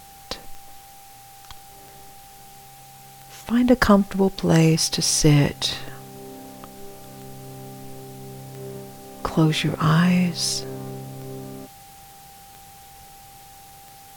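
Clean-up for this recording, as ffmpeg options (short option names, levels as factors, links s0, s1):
-af "adeclick=t=4,bandreject=f=790:w=30,afwtdn=0.004"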